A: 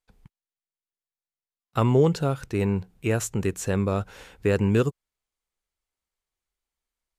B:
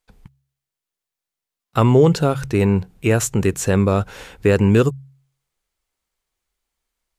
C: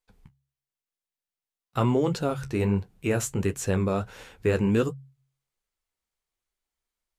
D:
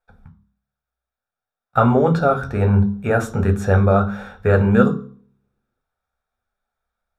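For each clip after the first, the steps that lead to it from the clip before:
hum removal 67.74 Hz, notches 2; in parallel at −2.5 dB: brickwall limiter −16.5 dBFS, peak gain reduction 7 dB; on the sum: level +3.5 dB
flanger 1.4 Hz, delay 7.6 ms, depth 7.9 ms, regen −43%; level −4.5 dB
convolution reverb RT60 0.50 s, pre-delay 3 ms, DRR 8 dB; level −3 dB

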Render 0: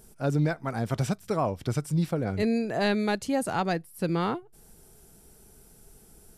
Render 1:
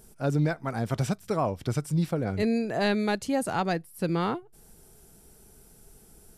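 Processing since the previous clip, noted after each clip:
no processing that can be heard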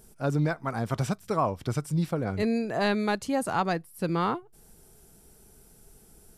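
dynamic equaliser 1,100 Hz, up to +6 dB, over −45 dBFS, Q 2.2
level −1 dB

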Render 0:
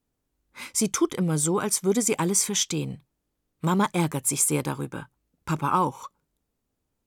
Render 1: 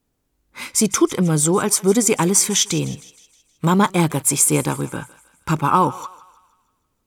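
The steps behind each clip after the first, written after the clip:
feedback echo with a high-pass in the loop 157 ms, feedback 52%, high-pass 740 Hz, level −17 dB
level +7 dB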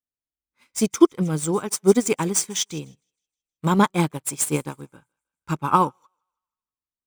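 running median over 3 samples
expander for the loud parts 2.5 to 1, over −34 dBFS
level +3.5 dB

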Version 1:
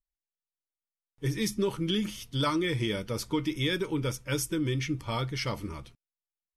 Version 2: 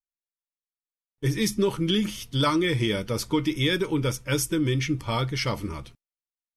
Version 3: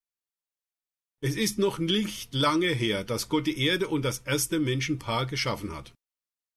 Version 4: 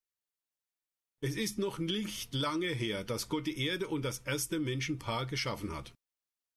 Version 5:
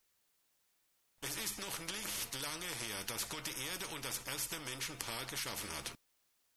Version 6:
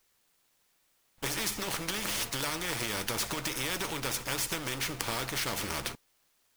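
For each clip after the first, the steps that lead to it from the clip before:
noise gate with hold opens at −43 dBFS; level +5 dB
low-shelf EQ 220 Hz −6 dB
downward compressor 3 to 1, threshold −31 dBFS, peak gain reduction 9 dB; level −1.5 dB
every bin compressed towards the loudest bin 4 to 1; level +7 dB
each half-wave held at its own peak; level +4 dB

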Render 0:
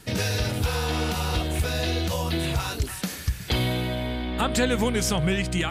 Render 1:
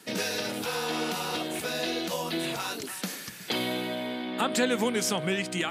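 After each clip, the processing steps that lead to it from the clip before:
high-pass filter 200 Hz 24 dB per octave
level −2 dB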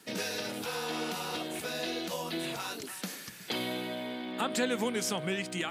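surface crackle 140 per second −47 dBFS
level −4.5 dB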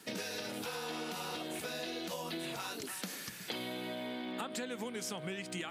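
downward compressor, threshold −38 dBFS, peak gain reduction 13 dB
level +1 dB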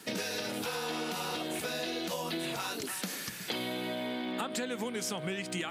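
soft clipping −23.5 dBFS, distortion −32 dB
level +5 dB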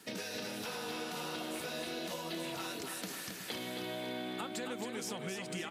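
repeating echo 269 ms, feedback 53%, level −6 dB
level −6 dB

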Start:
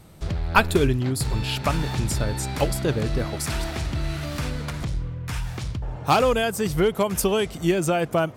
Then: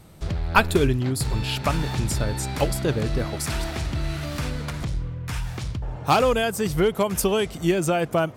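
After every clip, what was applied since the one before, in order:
no processing that can be heard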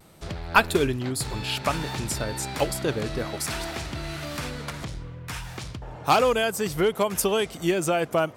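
low-shelf EQ 170 Hz −11 dB
pitch vibrato 0.58 Hz 24 cents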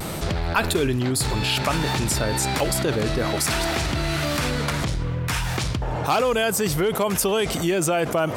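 envelope flattener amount 70%
level −5 dB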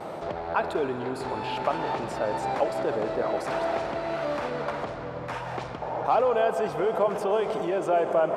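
resonant band-pass 690 Hz, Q 1.5
convolution reverb RT60 5.3 s, pre-delay 114 ms, DRR 6.5 dB
level +1 dB

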